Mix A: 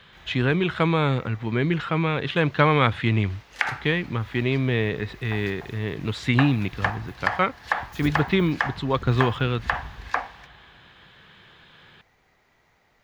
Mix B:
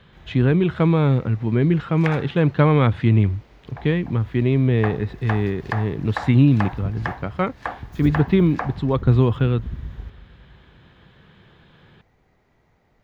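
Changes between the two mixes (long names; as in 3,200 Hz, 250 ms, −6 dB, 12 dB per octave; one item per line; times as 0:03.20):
second sound: entry −1.55 s
master: add tilt shelving filter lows +7 dB, about 720 Hz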